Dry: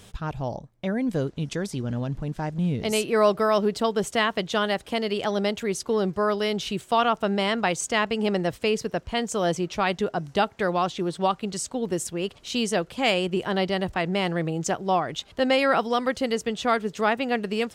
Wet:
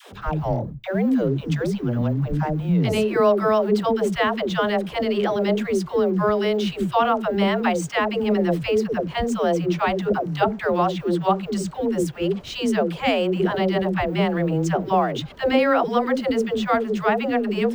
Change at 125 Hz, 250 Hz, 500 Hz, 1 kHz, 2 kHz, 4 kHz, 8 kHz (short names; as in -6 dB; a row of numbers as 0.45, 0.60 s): +6.0, +5.0, +4.0, +2.5, +0.5, -1.5, -5.5 dB